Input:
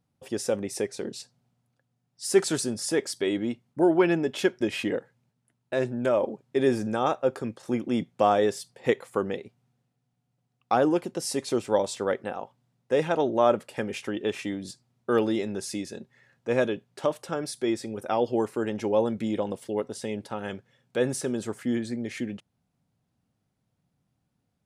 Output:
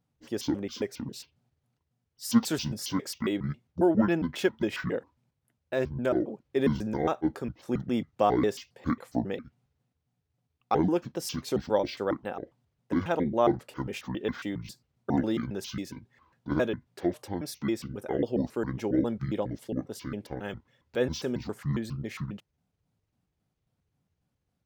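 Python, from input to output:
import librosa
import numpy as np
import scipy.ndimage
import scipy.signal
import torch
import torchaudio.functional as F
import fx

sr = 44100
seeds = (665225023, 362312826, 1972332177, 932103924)

y = fx.pitch_trill(x, sr, semitones=-9.0, every_ms=136)
y = np.interp(np.arange(len(y)), np.arange(len(y))[::2], y[::2])
y = F.gain(torch.from_numpy(y), -2.0).numpy()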